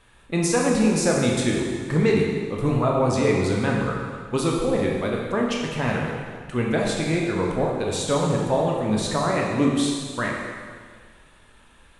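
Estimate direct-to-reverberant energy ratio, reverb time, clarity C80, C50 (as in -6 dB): -2.0 dB, 1.7 s, 2.5 dB, 0.5 dB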